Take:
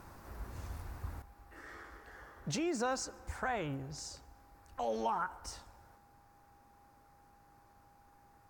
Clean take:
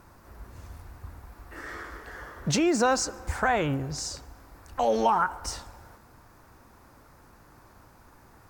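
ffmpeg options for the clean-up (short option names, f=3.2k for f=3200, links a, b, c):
-af "bandreject=f=810:w=30,asetnsamples=n=441:p=0,asendcmd='1.22 volume volume 11.5dB',volume=0dB"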